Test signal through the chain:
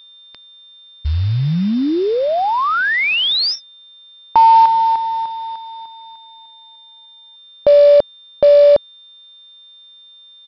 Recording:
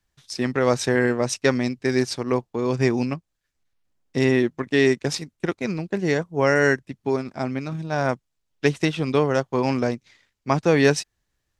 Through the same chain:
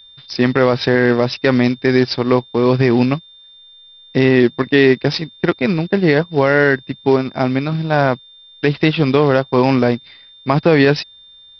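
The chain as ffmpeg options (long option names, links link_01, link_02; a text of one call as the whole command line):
ffmpeg -i in.wav -af "aeval=exprs='val(0)+0.00282*sin(2*PI*3600*n/s)':channel_layout=same,aresample=11025,acrusher=bits=6:mode=log:mix=0:aa=0.000001,aresample=44100,alimiter=level_in=11dB:limit=-1dB:release=50:level=0:latency=1,volume=-1dB" out.wav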